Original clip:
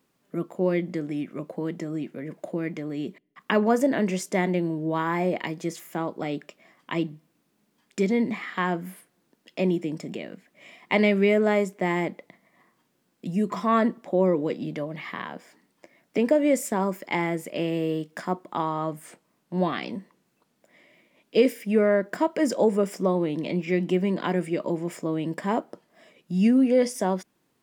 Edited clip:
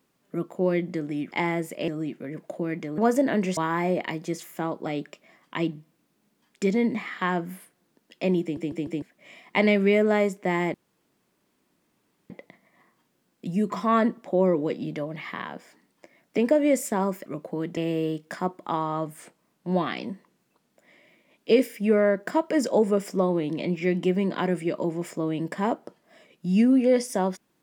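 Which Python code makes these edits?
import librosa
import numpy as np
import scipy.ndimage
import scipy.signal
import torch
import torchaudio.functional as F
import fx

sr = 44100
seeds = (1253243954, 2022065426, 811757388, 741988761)

y = fx.edit(x, sr, fx.swap(start_s=1.31, length_s=0.51, other_s=17.06, other_length_s=0.57),
    fx.cut(start_s=2.92, length_s=0.71),
    fx.cut(start_s=4.22, length_s=0.71),
    fx.stutter_over(start_s=9.78, slice_s=0.15, count=4),
    fx.insert_room_tone(at_s=12.1, length_s=1.56), tone=tone)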